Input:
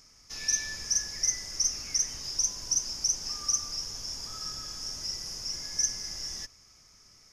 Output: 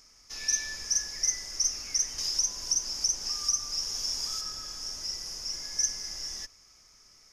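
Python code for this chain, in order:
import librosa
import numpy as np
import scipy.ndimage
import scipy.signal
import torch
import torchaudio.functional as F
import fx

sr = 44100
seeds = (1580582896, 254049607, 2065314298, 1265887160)

y = fx.peak_eq(x, sr, hz=120.0, db=-7.5, octaves=1.9)
y = fx.band_squash(y, sr, depth_pct=70, at=(2.18, 4.41))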